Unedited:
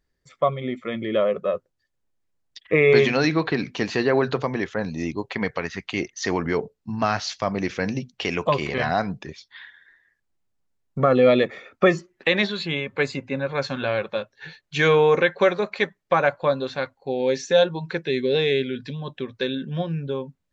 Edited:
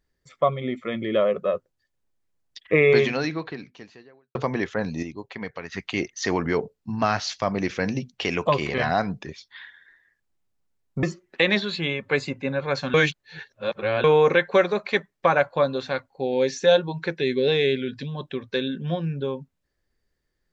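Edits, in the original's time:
0:02.79–0:04.35: fade out quadratic
0:05.03–0:05.72: clip gain −8 dB
0:11.03–0:11.90: remove
0:13.81–0:14.91: reverse

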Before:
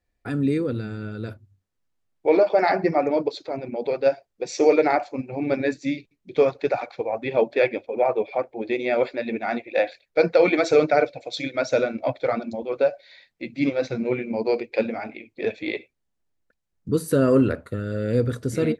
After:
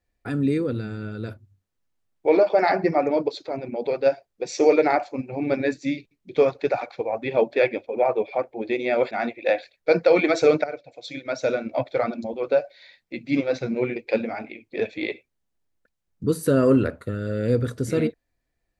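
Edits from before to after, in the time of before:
0:09.11–0:09.40: remove
0:10.93–0:12.12: fade in linear, from −16 dB
0:14.25–0:14.61: remove

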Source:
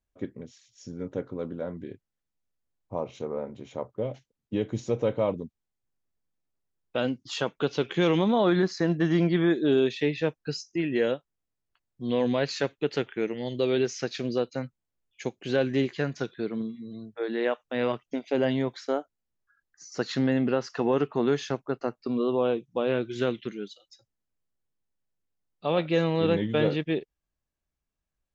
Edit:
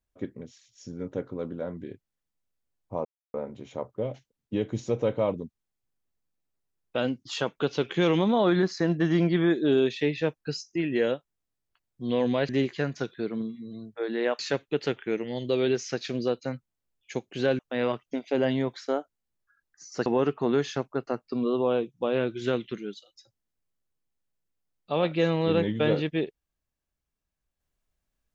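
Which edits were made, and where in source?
0:03.05–0:03.34: silence
0:15.69–0:17.59: move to 0:12.49
0:20.06–0:20.80: remove

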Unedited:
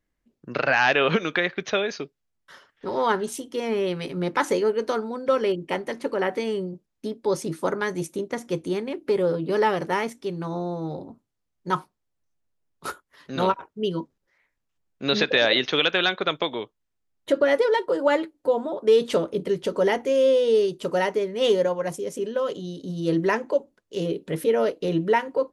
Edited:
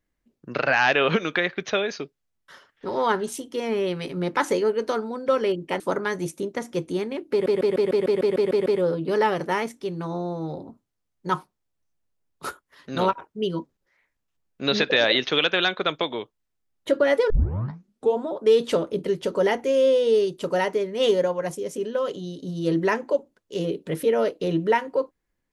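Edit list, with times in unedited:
0:05.80–0:07.56: remove
0:09.07: stutter 0.15 s, 10 plays
0:17.71: tape start 0.88 s

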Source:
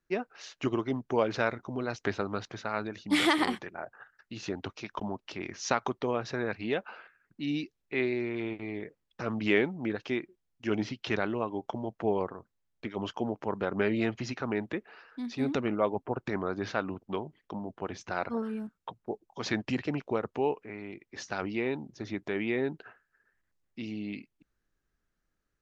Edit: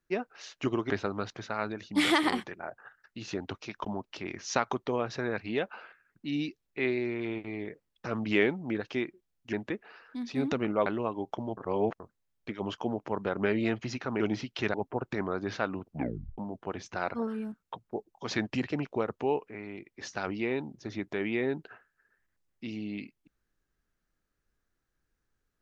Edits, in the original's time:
0:00.90–0:02.05: remove
0:10.68–0:11.22: swap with 0:14.56–0:15.89
0:11.93–0:12.36: reverse
0:17.02: tape stop 0.51 s

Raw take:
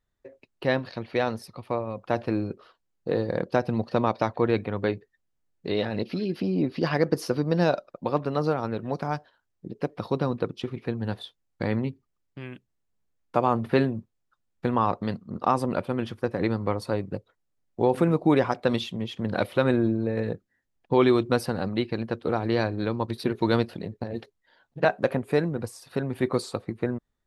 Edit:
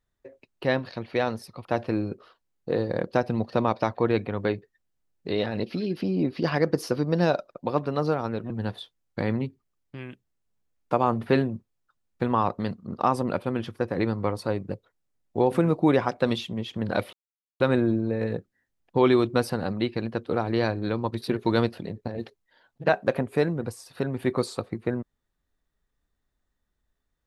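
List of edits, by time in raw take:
0:01.65–0:02.04: remove
0:08.89–0:10.93: remove
0:19.56: splice in silence 0.47 s

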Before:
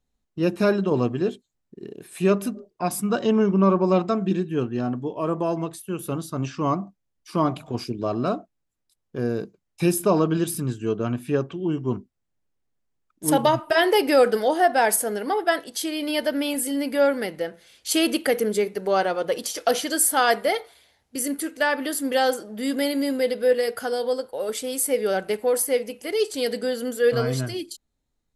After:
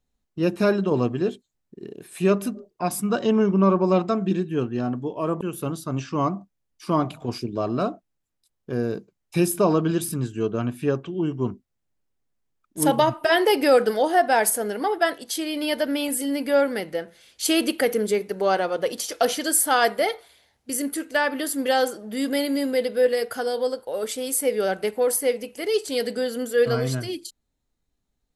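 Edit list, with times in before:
0:05.41–0:05.87: remove

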